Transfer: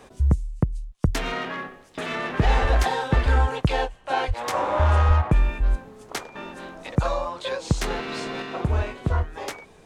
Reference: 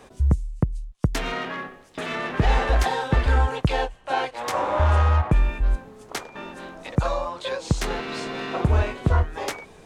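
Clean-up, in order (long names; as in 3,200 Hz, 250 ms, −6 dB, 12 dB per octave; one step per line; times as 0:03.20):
high-pass at the plosives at 0:01.04/0:02.61/0:04.27/0:05.07
level correction +3.5 dB, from 0:08.42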